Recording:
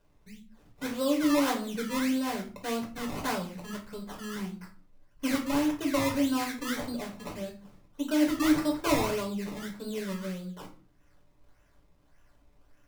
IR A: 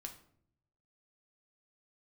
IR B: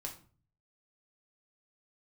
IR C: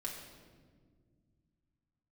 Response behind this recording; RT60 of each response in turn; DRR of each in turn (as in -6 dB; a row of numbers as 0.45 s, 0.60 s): B; 0.65 s, 0.40 s, 1.7 s; 3.0 dB, 0.5 dB, -3.0 dB